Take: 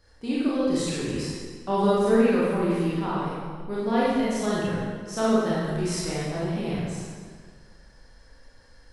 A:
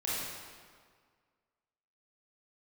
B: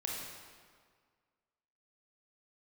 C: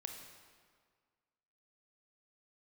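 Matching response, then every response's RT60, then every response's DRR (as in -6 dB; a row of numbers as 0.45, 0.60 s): A; 1.8, 1.8, 1.8 s; -8.5, -3.0, 3.0 dB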